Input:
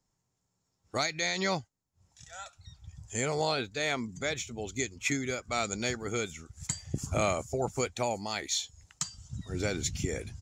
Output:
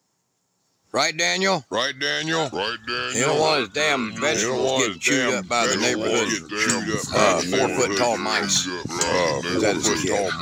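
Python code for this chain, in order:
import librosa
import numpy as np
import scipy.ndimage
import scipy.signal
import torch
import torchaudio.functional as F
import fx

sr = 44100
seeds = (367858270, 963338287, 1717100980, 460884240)

p1 = fx.echo_pitch(x, sr, ms=597, semitones=-3, count=3, db_per_echo=-3.0)
p2 = scipy.signal.sosfilt(scipy.signal.butter(2, 200.0, 'highpass', fs=sr, output='sos'), p1)
p3 = 10.0 ** (-32.0 / 20.0) * np.tanh(p2 / 10.0 ** (-32.0 / 20.0))
p4 = p2 + (p3 * librosa.db_to_amplitude(-8.0))
y = p4 * librosa.db_to_amplitude(8.5)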